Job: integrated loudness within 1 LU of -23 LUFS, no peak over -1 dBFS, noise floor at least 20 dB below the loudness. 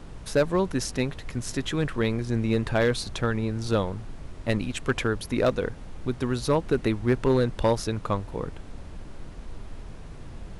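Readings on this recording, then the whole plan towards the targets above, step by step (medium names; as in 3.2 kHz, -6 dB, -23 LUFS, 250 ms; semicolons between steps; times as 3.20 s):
clipped samples 0.4%; clipping level -14.0 dBFS; noise floor -42 dBFS; noise floor target -47 dBFS; loudness -27.0 LUFS; peak level -14.0 dBFS; loudness target -23.0 LUFS
-> clip repair -14 dBFS; noise print and reduce 6 dB; trim +4 dB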